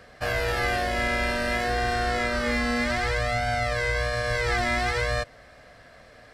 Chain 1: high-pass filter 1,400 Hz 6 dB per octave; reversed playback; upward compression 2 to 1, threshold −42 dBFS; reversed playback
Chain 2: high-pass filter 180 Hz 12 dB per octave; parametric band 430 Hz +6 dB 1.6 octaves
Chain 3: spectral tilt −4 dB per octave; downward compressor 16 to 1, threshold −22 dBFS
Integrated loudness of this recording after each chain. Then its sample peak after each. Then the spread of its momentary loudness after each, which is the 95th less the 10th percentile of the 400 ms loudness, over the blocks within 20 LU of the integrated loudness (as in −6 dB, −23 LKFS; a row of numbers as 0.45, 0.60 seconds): −29.0, −24.0, −29.0 LKFS; −16.5, −12.0, −14.5 dBFS; 2, 2, 16 LU